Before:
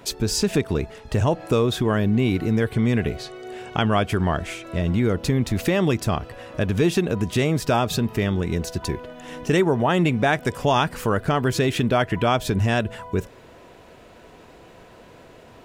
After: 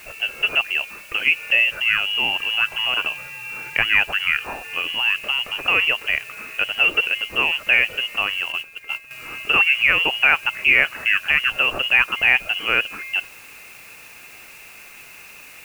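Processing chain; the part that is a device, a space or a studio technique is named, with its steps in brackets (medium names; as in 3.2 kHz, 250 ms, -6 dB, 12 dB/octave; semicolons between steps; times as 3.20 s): scrambled radio voice (band-pass 350–3200 Hz; frequency inversion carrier 3.1 kHz; white noise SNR 25 dB); 8.52–9.11 s: gate -31 dBFS, range -11 dB; trim +5 dB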